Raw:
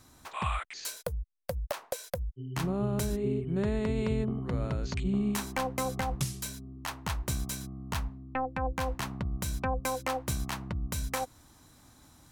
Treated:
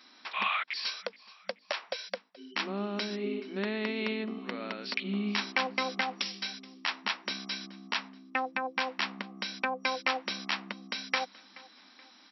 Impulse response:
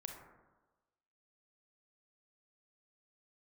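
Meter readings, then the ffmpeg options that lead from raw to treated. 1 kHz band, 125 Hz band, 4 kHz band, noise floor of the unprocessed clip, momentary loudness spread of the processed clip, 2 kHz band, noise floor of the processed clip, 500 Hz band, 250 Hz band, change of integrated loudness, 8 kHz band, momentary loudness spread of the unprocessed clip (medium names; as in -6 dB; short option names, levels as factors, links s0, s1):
+0.5 dB, under -10 dB, +8.5 dB, -59 dBFS, 9 LU, +8.0 dB, -59 dBFS, -2.5 dB, -3.5 dB, 0.0 dB, -11.0 dB, 8 LU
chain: -filter_complex "[0:a]asplit=2[s0][s1];[s1]aecho=0:1:427|854|1281:0.0841|0.0362|0.0156[s2];[s0][s2]amix=inputs=2:normalize=0,afftfilt=real='re*between(b*sr/4096,190,5700)':imag='im*between(b*sr/4096,190,5700)':win_size=4096:overlap=0.75,firequalizer=gain_entry='entry(480,0);entry(2200,13);entry(4400,11)':delay=0.05:min_phase=1,volume=0.708"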